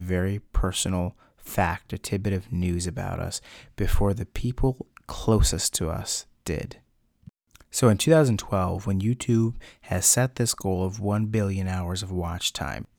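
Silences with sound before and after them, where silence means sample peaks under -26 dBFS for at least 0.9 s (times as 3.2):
6.71–7.75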